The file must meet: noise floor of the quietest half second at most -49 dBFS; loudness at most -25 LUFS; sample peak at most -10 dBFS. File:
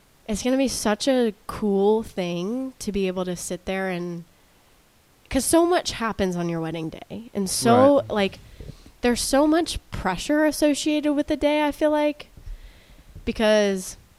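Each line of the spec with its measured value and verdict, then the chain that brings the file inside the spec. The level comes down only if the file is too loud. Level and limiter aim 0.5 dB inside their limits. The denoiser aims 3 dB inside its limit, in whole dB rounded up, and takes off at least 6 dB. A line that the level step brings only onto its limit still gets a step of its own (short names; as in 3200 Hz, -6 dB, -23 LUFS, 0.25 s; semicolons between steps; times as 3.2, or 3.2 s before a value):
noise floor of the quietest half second -58 dBFS: OK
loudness -22.5 LUFS: fail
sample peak -4.0 dBFS: fail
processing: gain -3 dB; limiter -10.5 dBFS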